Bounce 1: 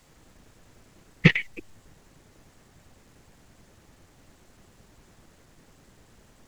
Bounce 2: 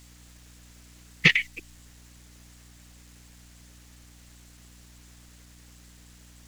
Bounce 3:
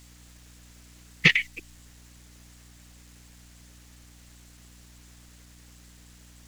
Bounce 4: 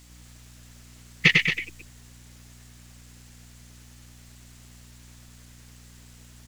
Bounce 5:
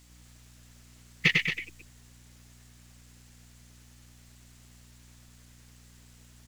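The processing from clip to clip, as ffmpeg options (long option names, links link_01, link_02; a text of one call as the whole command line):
ffmpeg -i in.wav -af "aeval=exprs='val(0)+0.00708*(sin(2*PI*60*n/s)+sin(2*PI*2*60*n/s)/2+sin(2*PI*3*60*n/s)/3+sin(2*PI*4*60*n/s)/4+sin(2*PI*5*60*n/s)/5)':channel_layout=same,tiltshelf=frequency=1400:gain=-9" out.wav
ffmpeg -i in.wav -af anull out.wav
ffmpeg -i in.wav -af "aecho=1:1:99.13|224.5:0.631|0.398" out.wav
ffmpeg -i in.wav -af "acrusher=bits=9:mode=log:mix=0:aa=0.000001,volume=-5.5dB" out.wav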